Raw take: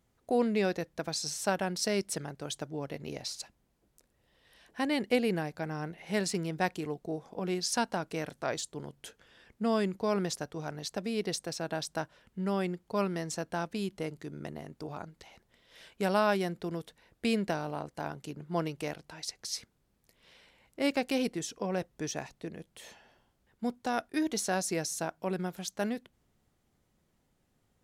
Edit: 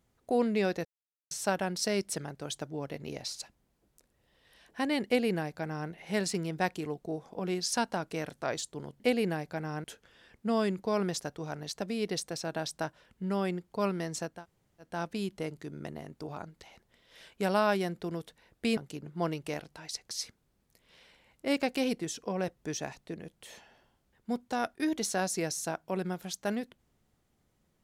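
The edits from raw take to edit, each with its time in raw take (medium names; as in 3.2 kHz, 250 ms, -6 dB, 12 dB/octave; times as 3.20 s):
0.85–1.31 s: mute
5.06–5.90 s: copy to 9.00 s
13.50 s: insert room tone 0.56 s, crossfade 0.24 s
17.37–18.11 s: delete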